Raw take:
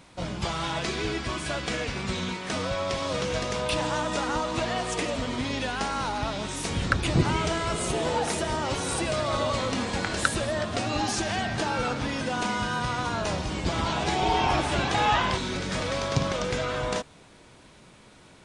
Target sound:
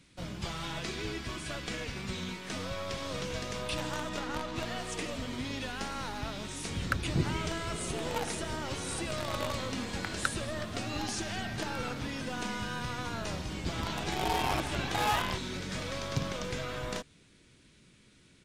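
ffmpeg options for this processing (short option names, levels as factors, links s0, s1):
-filter_complex "[0:a]acrossover=split=460|1400[s0][s1][s2];[s1]acrusher=bits=5:dc=4:mix=0:aa=0.000001[s3];[s0][s3][s2]amix=inputs=3:normalize=0,asettb=1/sr,asplit=3[s4][s5][s6];[s4]atrim=end=4.094[s7];[s5]atrim=start=4.09:end=4.6,asetpts=PTS-STARTPTS,afade=t=in:d=0.004:c=qsin,afade=t=out:st=0.506:d=0.004:c=qsin,adynamicsmooth=sensitivity=7.5:basefreq=5100[s8];[s6]atrim=start=4.596[s9];[s7][s8]acrossfade=d=0.004:c1=hsin:c2=qsin[s10];[s10][s9]acrossfade=d=0.004:c1=qsin:c2=hsin,aresample=32000,aresample=44100,volume=0.473"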